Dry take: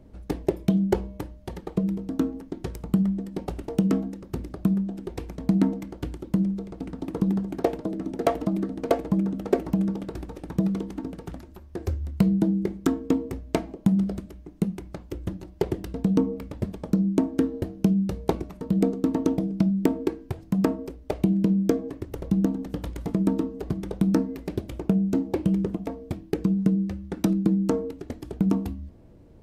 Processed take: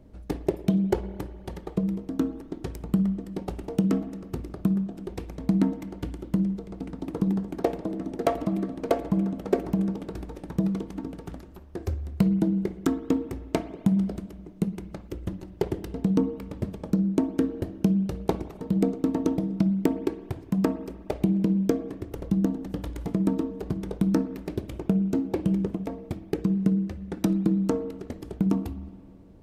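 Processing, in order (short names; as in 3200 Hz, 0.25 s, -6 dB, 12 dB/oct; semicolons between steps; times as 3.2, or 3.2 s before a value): spring tank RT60 2 s, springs 52/59 ms, chirp 70 ms, DRR 14 dB; gain -1.5 dB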